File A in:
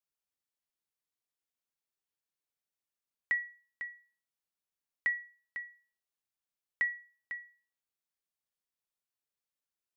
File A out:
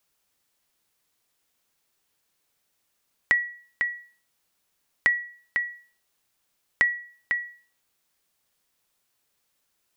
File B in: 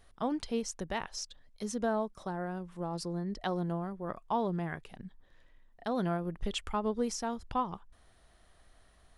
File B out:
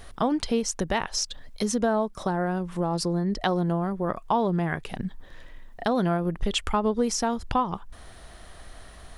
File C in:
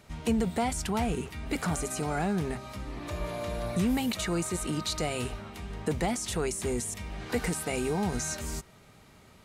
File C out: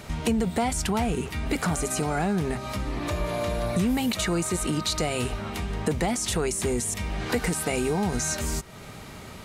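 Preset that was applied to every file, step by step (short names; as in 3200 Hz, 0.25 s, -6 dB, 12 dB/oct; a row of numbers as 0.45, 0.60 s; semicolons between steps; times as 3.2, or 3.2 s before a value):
compressor 2:1, threshold -45 dBFS; match loudness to -27 LUFS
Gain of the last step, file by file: +18.5, +17.0, +14.0 dB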